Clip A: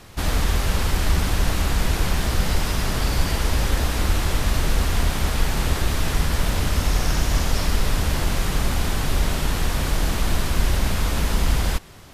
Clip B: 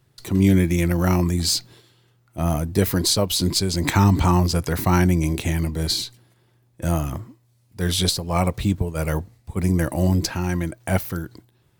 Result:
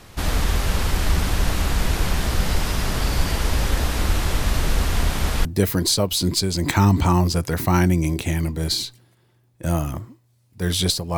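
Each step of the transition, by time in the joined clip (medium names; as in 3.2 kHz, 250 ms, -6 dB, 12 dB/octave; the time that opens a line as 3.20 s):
clip A
5.45 s: go over to clip B from 2.64 s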